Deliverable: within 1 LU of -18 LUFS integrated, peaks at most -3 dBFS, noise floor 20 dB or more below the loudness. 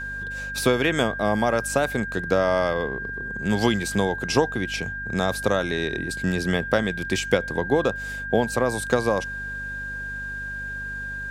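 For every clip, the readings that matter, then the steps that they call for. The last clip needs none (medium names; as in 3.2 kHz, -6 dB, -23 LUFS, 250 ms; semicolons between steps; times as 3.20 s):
hum 50 Hz; highest harmonic 250 Hz; hum level -37 dBFS; steady tone 1.6 kHz; tone level -30 dBFS; loudness -24.5 LUFS; peak level -5.0 dBFS; loudness target -18.0 LUFS
-> hum notches 50/100/150/200/250 Hz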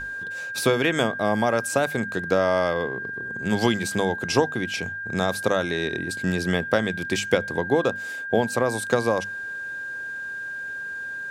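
hum not found; steady tone 1.6 kHz; tone level -30 dBFS
-> band-stop 1.6 kHz, Q 30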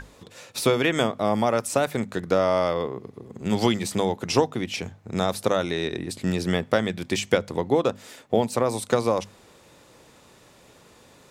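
steady tone not found; loudness -25.0 LUFS; peak level -5.0 dBFS; loudness target -18.0 LUFS
-> trim +7 dB; peak limiter -3 dBFS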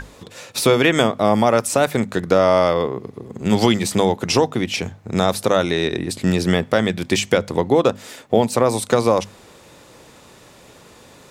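loudness -18.5 LUFS; peak level -3.0 dBFS; noise floor -47 dBFS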